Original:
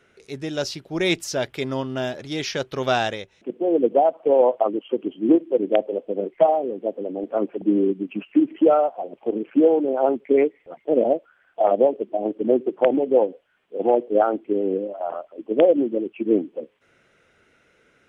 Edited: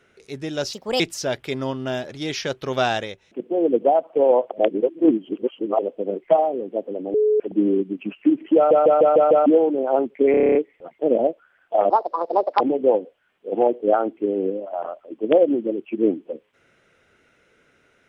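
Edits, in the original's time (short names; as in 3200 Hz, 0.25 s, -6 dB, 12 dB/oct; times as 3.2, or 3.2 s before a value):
0.73–1.1 speed 137%
4.61–5.89 reverse
7.24–7.5 bleep 426 Hz -14.5 dBFS
8.66 stutter in place 0.15 s, 6 plays
10.41 stutter 0.03 s, 9 plays
11.76–12.88 speed 159%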